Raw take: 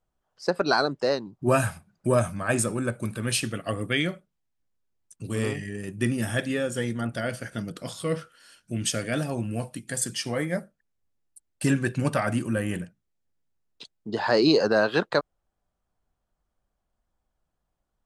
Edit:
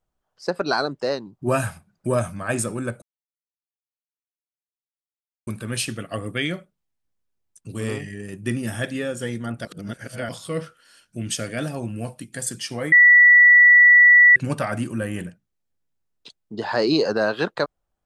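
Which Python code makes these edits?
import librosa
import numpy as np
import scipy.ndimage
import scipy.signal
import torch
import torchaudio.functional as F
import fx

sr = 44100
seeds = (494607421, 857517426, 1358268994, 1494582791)

y = fx.edit(x, sr, fx.insert_silence(at_s=3.02, length_s=2.45),
    fx.reverse_span(start_s=7.2, length_s=0.64),
    fx.bleep(start_s=10.47, length_s=1.44, hz=1950.0, db=-8.0), tone=tone)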